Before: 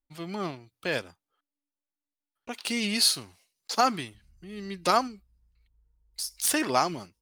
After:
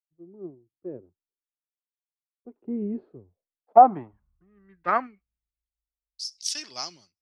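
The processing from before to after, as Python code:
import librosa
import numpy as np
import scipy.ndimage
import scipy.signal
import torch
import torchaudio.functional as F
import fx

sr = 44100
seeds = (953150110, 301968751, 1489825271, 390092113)

y = fx.doppler_pass(x, sr, speed_mps=5, closest_m=6.6, pass_at_s=2.86)
y = fx.filter_sweep_lowpass(y, sr, from_hz=370.0, to_hz=5500.0, start_s=2.98, end_s=6.25, q=4.0)
y = fx.band_widen(y, sr, depth_pct=100)
y = F.gain(torch.from_numpy(y), -5.5).numpy()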